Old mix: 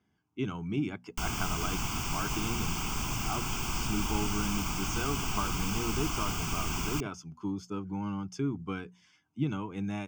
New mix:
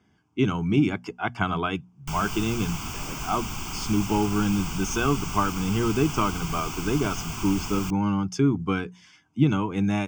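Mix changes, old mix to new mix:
speech +10.5 dB
background: entry +0.90 s

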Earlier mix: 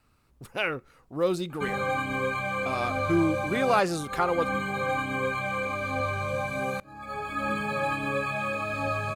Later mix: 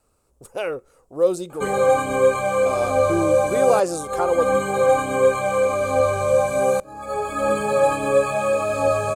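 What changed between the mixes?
background +7.0 dB
master: add octave-band graphic EQ 125/250/500/2,000/4,000/8,000 Hz −5/−4/+10/−8/−5/+11 dB

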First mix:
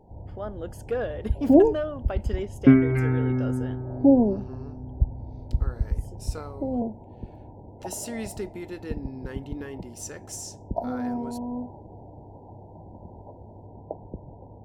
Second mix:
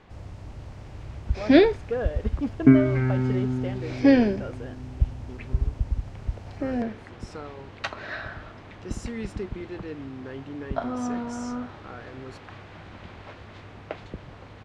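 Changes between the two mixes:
speech: entry +1.00 s
first sound: remove linear-phase brick-wall low-pass 1,000 Hz
master: add high-frequency loss of the air 120 metres

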